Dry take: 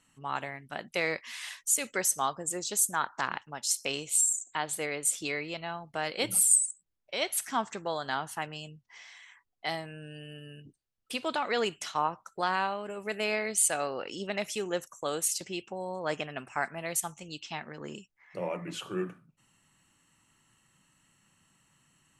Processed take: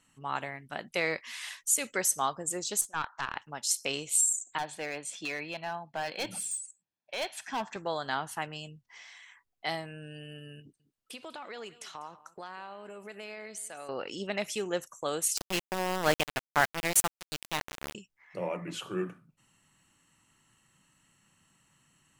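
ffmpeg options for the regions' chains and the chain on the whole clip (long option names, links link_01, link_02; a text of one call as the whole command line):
ffmpeg -i in.wav -filter_complex "[0:a]asettb=1/sr,asplit=3[link_01][link_02][link_03];[link_01]atrim=end=2.814[link_04];[link_02]atrim=start=2.81:end=3.36,asetpts=PTS-STARTPTS,afade=type=in:duration=0.004:curve=qsin,afade=type=out:start_time=0.546:duration=0.004:curve=qsin,highpass=720,lowpass=4800,aeval=exprs='(tanh(11.2*val(0)+0.45)-tanh(0.45))/11.2':channel_layout=same[link_05];[link_03]atrim=start=3.356[link_06];[link_04][link_05]acrossfade=duration=0.004:curve1=hsin:curve2=qsin[link_07];[link_07][link_06]acrossfade=duration=0.004:curve1=qsin:curve2=hsin,asettb=1/sr,asplit=3[link_08][link_09][link_10];[link_08]atrim=end=4.584[link_11];[link_09]atrim=start=4.58:end=7.76,asetpts=PTS-STARTPTS,afade=type=in:duration=0.004:curve=qsin,afade=type=out:start_time=3.176:duration=0.004:curve=qsin,highpass=190,lowpass=4400,aecho=1:1:1.2:0.43,atrim=end_sample=140238,asoftclip=type=hard:threshold=-28.5dB[link_12];[link_10]atrim=start=7.756[link_13];[link_11][link_12]acrossfade=duration=0.004:curve1=hsin:curve2=qsin[link_14];[link_14][link_13]acrossfade=duration=0.004:curve1=qsin:curve2=hsin,asettb=1/sr,asplit=3[link_15][link_16][link_17];[link_15]atrim=end=10.604[link_18];[link_16]atrim=start=10.6:end=13.89,asetpts=PTS-STARTPTS,afade=type=in:duration=0.004:curve=qsin,afade=type=out:start_time=3.286:duration=0.004:curve=qsin,lowshelf=frequency=100:gain=-9.5,acompressor=threshold=-43dB:ratio=3:attack=3.2:release=140:knee=1:detection=peak,aecho=1:1:197:0.126,atrim=end_sample=145089[link_19];[link_17]atrim=start=13.886[link_20];[link_18][link_19]acrossfade=duration=0.004:curve1=hsin:curve2=qsin[link_21];[link_21][link_20]acrossfade=duration=0.004:curve1=qsin:curve2=hsin,asettb=1/sr,asplit=3[link_22][link_23][link_24];[link_22]atrim=end=15.374[link_25];[link_23]atrim=start=15.37:end=17.95,asetpts=PTS-STARTPTS,afade=type=in:duration=0.004:curve=qsin,afade=type=out:start_time=2.576:duration=0.004:curve=qsin,acontrast=70,aeval=exprs='val(0)*gte(abs(val(0)),0.0531)':channel_layout=same[link_26];[link_24]atrim=start=17.946[link_27];[link_25][link_26]acrossfade=duration=0.004:curve1=hsin:curve2=qsin[link_28];[link_28][link_27]acrossfade=duration=0.004:curve1=qsin:curve2=hsin" out.wav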